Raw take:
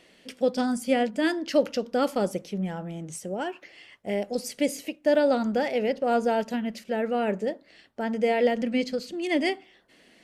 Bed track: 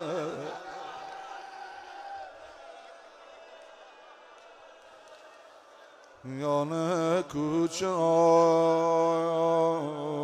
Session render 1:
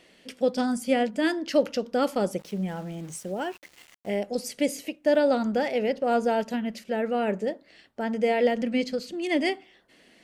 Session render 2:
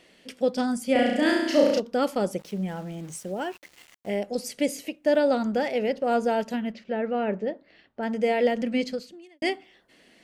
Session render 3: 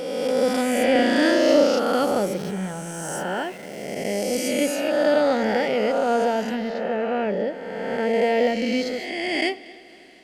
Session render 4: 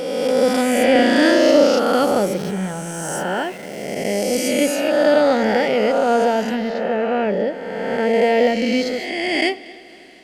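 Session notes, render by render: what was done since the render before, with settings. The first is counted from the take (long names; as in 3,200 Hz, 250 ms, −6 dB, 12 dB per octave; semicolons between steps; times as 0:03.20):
0:02.39–0:04.19: centre clipping without the shift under −46 dBFS
0:00.92–0:01.80: flutter between parallel walls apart 5.8 metres, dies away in 0.96 s; 0:06.72–0:08.03: high-frequency loss of the air 200 metres; 0:08.90–0:09.42: fade out quadratic
peak hold with a rise ahead of every peak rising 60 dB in 2.10 s; echo machine with several playback heads 79 ms, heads first and third, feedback 71%, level −23.5 dB
level +4.5 dB; brickwall limiter −3 dBFS, peak gain reduction 2.5 dB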